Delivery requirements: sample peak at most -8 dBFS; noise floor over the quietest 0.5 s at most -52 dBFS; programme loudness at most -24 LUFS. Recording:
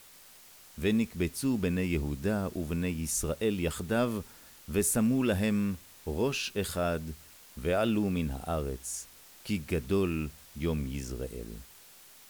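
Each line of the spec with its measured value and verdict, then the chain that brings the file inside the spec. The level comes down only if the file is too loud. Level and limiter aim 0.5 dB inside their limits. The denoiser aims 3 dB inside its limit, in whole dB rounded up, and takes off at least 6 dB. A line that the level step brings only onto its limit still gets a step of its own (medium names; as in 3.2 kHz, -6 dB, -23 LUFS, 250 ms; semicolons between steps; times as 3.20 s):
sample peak -15.5 dBFS: pass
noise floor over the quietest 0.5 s -54 dBFS: pass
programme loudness -31.5 LUFS: pass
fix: none needed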